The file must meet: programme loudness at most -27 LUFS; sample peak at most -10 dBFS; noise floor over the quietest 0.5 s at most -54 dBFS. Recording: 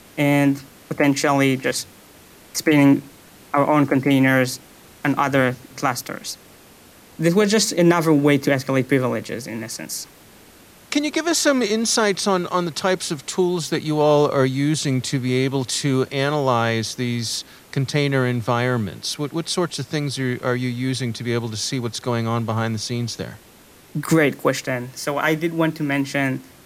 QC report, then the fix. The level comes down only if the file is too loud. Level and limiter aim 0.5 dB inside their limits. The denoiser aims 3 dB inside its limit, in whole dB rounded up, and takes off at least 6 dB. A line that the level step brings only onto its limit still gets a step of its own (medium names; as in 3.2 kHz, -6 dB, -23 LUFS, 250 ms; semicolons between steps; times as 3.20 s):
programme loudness -20.5 LUFS: fail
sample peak -6.0 dBFS: fail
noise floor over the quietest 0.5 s -48 dBFS: fail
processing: trim -7 dB